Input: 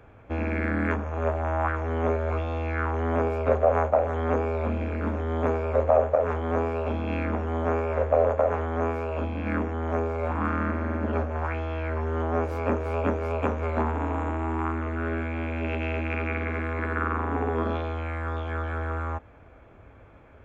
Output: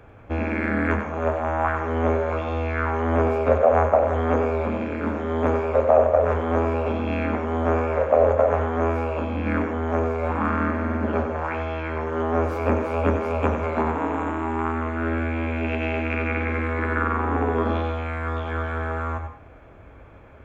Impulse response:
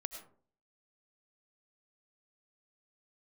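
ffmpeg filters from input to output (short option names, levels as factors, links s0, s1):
-filter_complex "[0:a]asplit=2[s0][s1];[1:a]atrim=start_sample=2205,asetrate=74970,aresample=44100,adelay=94[s2];[s1][s2]afir=irnorm=-1:irlink=0,volume=0.944[s3];[s0][s3]amix=inputs=2:normalize=0,volume=1.5"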